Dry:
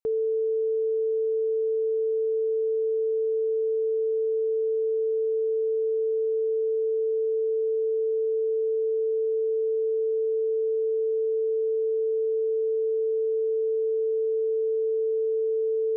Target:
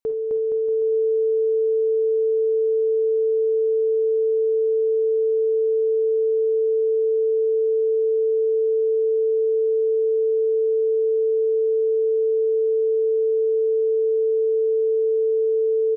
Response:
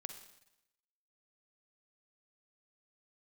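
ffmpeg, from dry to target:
-filter_complex "[0:a]aecho=1:1:260|468|634.4|767.5|874:0.631|0.398|0.251|0.158|0.1[s0];[1:a]atrim=start_sample=2205,atrim=end_sample=3969[s1];[s0][s1]afir=irnorm=-1:irlink=0,volume=2.24"

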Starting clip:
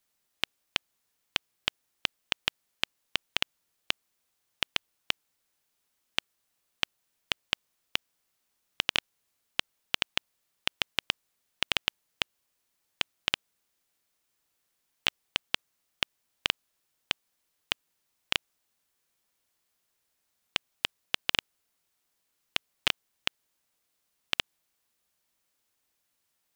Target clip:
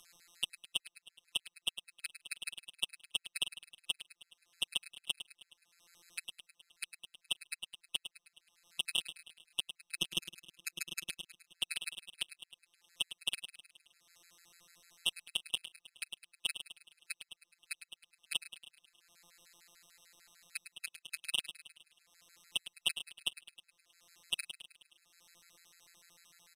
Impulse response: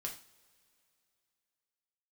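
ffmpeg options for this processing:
-filter_complex "[0:a]asettb=1/sr,asplit=3[s0][s1][s2];[s0]atrim=end=9.974[s3];[s1]atrim=start=9.97:end=11.07,asetpts=PTS-STARTPTS,afade=t=in:d=0.004:c=qsin,afade=t=out:st=1.096:d=0.004:c=qsin,equalizer=f=260:t=o:w=2.3:g=12.5[s4];[s2]atrim=start=11.066[s5];[s3][s4]acrossfade=d=0.004:c1=hsin:c2=qsin[s6];[s6][s5]acrossfade=d=0.004:c1=qsin:c2=hsin,asettb=1/sr,asplit=3[s7][s8][s9];[s7]atrim=end=20.714[s10];[s8]atrim=start=20.71:end=21.18,asetpts=PTS-STARTPTS,afade=t=in:d=0.004:c=qsin,afade=t=out:st=0.466:d=0.004:c=qsin,highpass=120[s11];[s9]atrim=start=21.176[s12];[s10][s11]acrossfade=d=0.004:c1=hsin:c2=qsin[s13];[s13][s12]acrossfade=d=0.004:c1=qsin:c2=hsin,asplit=2[s14][s15];[s15]acompressor=mode=upward:threshold=0.0398:ratio=2.5,volume=1[s16];[s14][s16]amix=inputs=2:normalize=0,asoftclip=type=tanh:threshold=0.211,afftfilt=real='hypot(re,im)*cos(PI*b)':imag='0':win_size=1024:overlap=0.75,crystalizer=i=6.5:c=0,adynamicsmooth=sensitivity=3.5:basefreq=2400,asplit=2[s17][s18];[s18]aecho=0:1:105|210|315|420|525|630:0.282|0.158|0.0884|0.0495|0.0277|0.0155[s19];[s17][s19]amix=inputs=2:normalize=0,aresample=32000,aresample=44100,afftfilt=real='re*gt(sin(2*PI*6.7*pts/sr)*(1-2*mod(floor(b*sr/1024/1300),2)),0)':imag='im*gt(sin(2*PI*6.7*pts/sr)*(1-2*mod(floor(b*sr/1024/1300),2)),0)':win_size=1024:overlap=0.75,volume=0.447"

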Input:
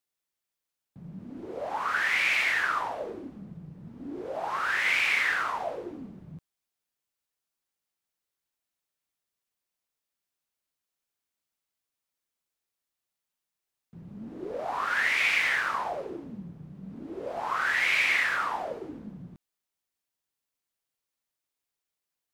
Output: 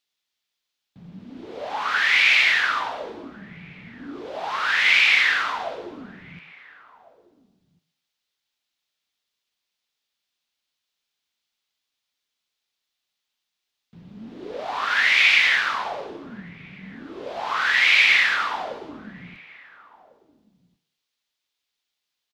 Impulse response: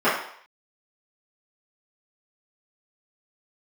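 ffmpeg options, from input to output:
-filter_complex "[0:a]firequalizer=gain_entry='entry(540,0);entry(3500,14);entry(8800,-2)':delay=0.05:min_phase=1,asplit=2[s0][s1];[s1]adelay=1399,volume=0.0891,highshelf=f=4000:g=-31.5[s2];[s0][s2]amix=inputs=2:normalize=0,asplit=2[s3][s4];[1:a]atrim=start_sample=2205,asetrate=30429,aresample=44100[s5];[s4][s5]afir=irnorm=-1:irlink=0,volume=0.0266[s6];[s3][s6]amix=inputs=2:normalize=0"

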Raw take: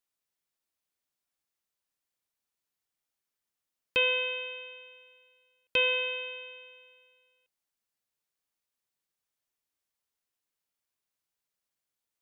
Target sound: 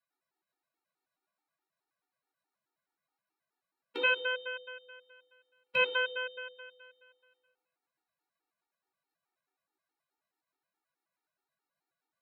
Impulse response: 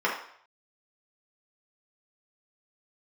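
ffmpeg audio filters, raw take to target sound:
-filter_complex "[0:a]tremolo=f=7.9:d=0.39[s0];[1:a]atrim=start_sample=2205,asetrate=33516,aresample=44100[s1];[s0][s1]afir=irnorm=-1:irlink=0,afftfilt=real='re*gt(sin(2*PI*4.7*pts/sr)*(1-2*mod(floor(b*sr/1024/240),2)),0)':imag='im*gt(sin(2*PI*4.7*pts/sr)*(1-2*mod(floor(b*sr/1024/240),2)),0)':win_size=1024:overlap=0.75,volume=0.562"

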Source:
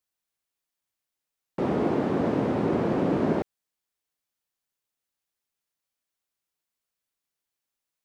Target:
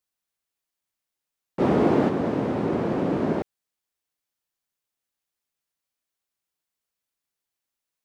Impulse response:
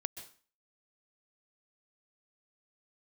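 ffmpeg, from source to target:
-filter_complex "[0:a]asplit=3[s0][s1][s2];[s0]afade=t=out:st=1.59:d=0.02[s3];[s1]acontrast=36,afade=t=in:st=1.59:d=0.02,afade=t=out:st=2.08:d=0.02[s4];[s2]afade=t=in:st=2.08:d=0.02[s5];[s3][s4][s5]amix=inputs=3:normalize=0"

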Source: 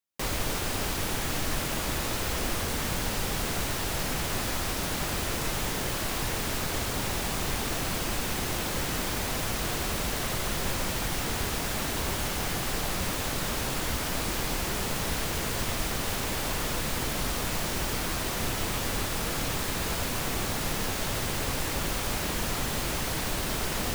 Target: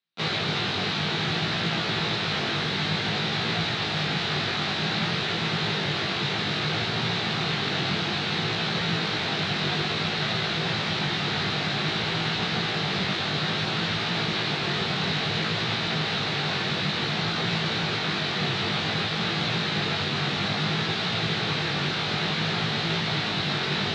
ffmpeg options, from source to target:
-filter_complex "[0:a]asplit=2[s0][s1];[s1]asetrate=55563,aresample=44100,atempo=0.793701,volume=0.501[s2];[s0][s2]amix=inputs=2:normalize=0,flanger=delay=18:depth=2.7:speed=0.57,highpass=f=120:w=0.5412,highpass=f=120:w=1.3066,equalizer=f=160:t=q:w=4:g=5,equalizer=f=270:t=q:w=4:g=-9,equalizer=f=550:t=q:w=4:g=-8,equalizer=f=1000:t=q:w=4:g=-6,equalizer=f=3900:t=q:w=4:g=8,lowpass=f=4200:w=0.5412,lowpass=f=4200:w=1.3066,volume=2.66"

